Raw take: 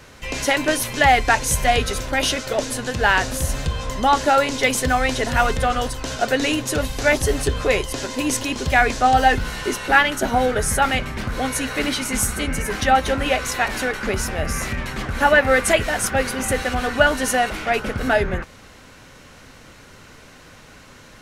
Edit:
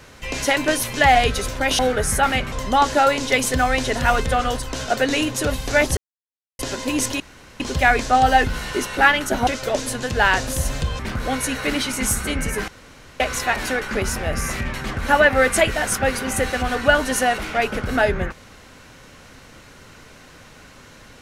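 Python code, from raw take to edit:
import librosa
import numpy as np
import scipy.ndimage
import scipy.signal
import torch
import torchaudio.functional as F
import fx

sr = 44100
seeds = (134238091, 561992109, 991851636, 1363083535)

y = fx.edit(x, sr, fx.cut(start_s=1.15, length_s=0.52),
    fx.swap(start_s=2.31, length_s=1.52, other_s=10.38, other_length_s=0.73),
    fx.silence(start_s=7.28, length_s=0.62),
    fx.insert_room_tone(at_s=8.51, length_s=0.4),
    fx.room_tone_fill(start_s=12.8, length_s=0.52), tone=tone)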